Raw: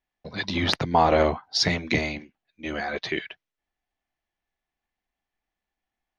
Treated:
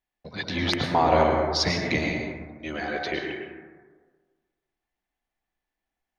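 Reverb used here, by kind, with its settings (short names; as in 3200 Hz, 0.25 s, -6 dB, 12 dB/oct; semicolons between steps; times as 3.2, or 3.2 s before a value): plate-style reverb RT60 1.5 s, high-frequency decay 0.3×, pre-delay 95 ms, DRR 1.5 dB; gain -2.5 dB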